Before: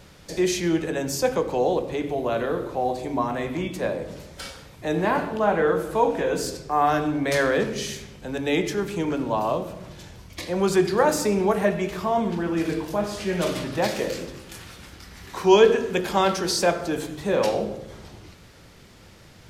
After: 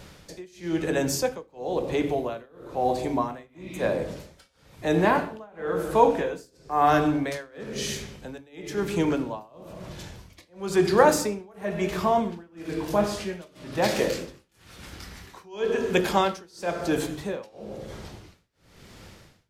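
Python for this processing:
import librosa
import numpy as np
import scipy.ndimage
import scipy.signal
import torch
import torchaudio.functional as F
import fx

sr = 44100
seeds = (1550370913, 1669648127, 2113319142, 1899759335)

y = fx.spec_repair(x, sr, seeds[0], start_s=3.51, length_s=0.29, low_hz=1900.0, high_hz=5800.0, source='both')
y = y * (1.0 - 0.98 / 2.0 + 0.98 / 2.0 * np.cos(2.0 * np.pi * 1.0 * (np.arange(len(y)) / sr)))
y = y * librosa.db_to_amplitude(2.5)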